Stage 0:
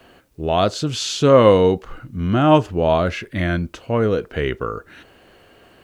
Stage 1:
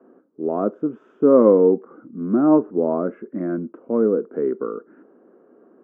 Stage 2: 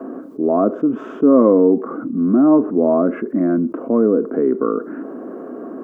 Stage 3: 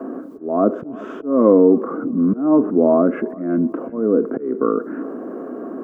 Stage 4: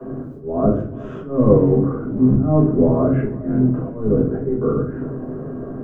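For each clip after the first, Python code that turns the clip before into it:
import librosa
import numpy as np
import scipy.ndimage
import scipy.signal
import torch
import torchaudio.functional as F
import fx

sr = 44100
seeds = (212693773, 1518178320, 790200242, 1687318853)

y1 = scipy.signal.sosfilt(scipy.signal.ellip(3, 1.0, 50, [220.0, 1300.0], 'bandpass', fs=sr, output='sos'), x)
y1 = fx.low_shelf_res(y1, sr, hz=530.0, db=8.0, q=1.5)
y1 = y1 * librosa.db_to_amplitude(-6.5)
y2 = fx.small_body(y1, sr, hz=(270.0, 660.0, 1100.0), ring_ms=45, db=8)
y2 = fx.env_flatten(y2, sr, amount_pct=50)
y2 = y2 * librosa.db_to_amplitude(-2.5)
y3 = fx.auto_swell(y2, sr, attack_ms=273.0)
y3 = fx.echo_feedback(y3, sr, ms=363, feedback_pct=38, wet_db=-20.5)
y3 = y3 * librosa.db_to_amplitude(1.0)
y4 = fx.octave_divider(y3, sr, octaves=1, level_db=1.0)
y4 = fx.room_shoebox(y4, sr, seeds[0], volume_m3=39.0, walls='mixed', distance_m=1.3)
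y4 = y4 * librosa.db_to_amplitude(-11.5)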